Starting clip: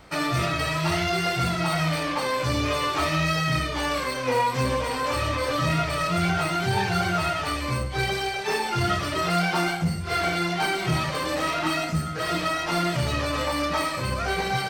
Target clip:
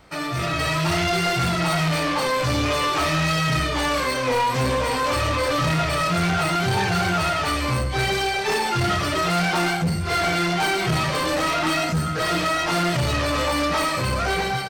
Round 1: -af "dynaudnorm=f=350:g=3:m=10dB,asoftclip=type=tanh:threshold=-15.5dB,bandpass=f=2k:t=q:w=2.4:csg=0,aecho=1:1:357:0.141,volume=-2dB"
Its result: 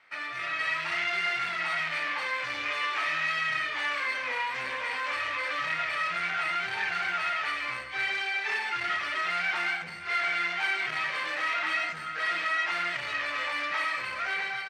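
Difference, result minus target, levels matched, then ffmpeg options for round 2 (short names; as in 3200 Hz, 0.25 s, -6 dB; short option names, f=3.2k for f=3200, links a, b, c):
echo-to-direct +8 dB; 2000 Hz band +5.5 dB
-af "dynaudnorm=f=350:g=3:m=10dB,asoftclip=type=tanh:threshold=-15.5dB,aecho=1:1:357:0.0562,volume=-2dB"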